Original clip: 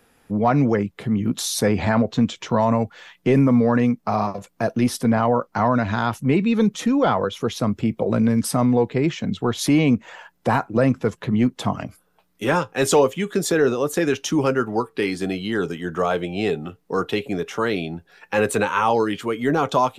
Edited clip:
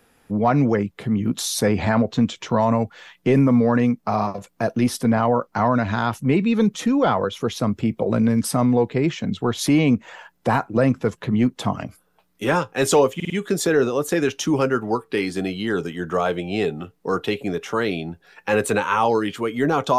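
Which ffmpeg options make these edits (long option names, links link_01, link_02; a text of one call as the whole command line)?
ffmpeg -i in.wav -filter_complex "[0:a]asplit=4[link_01][link_02][link_03][link_04];[link_01]atrim=end=13.202[link_05];[link_02]atrim=start=13.148:end=13.202[link_06];[link_03]atrim=start=13.148:end=13.202[link_07];[link_04]atrim=start=13.148[link_08];[link_05][link_06]acrossfade=duration=0.004:curve1=hsin:curve2=hsin[link_09];[link_09][link_07]acrossfade=duration=0.004:curve1=hsin:curve2=hsin[link_10];[link_10][link_08]acrossfade=duration=0.004:curve1=hsin:curve2=hsin" out.wav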